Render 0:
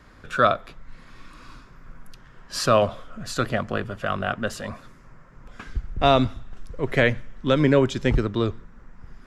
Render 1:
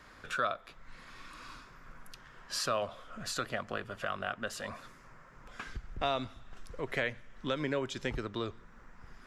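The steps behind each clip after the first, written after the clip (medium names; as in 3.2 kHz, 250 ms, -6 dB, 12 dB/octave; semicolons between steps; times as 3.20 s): bass shelf 400 Hz -10.5 dB; compression 2:1, threshold -38 dBFS, peak gain reduction 12.5 dB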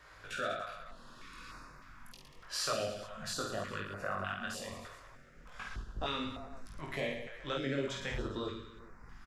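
chorus 0.32 Hz, delay 19 ms, depth 3.1 ms; on a send: reverse bouncing-ball echo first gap 50 ms, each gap 1.25×, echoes 5; on the sum: step-sequenced notch 3.3 Hz 220–3200 Hz; trim +1 dB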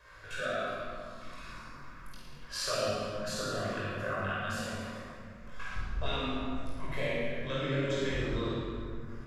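simulated room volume 3100 m³, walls mixed, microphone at 5.3 m; trim -4 dB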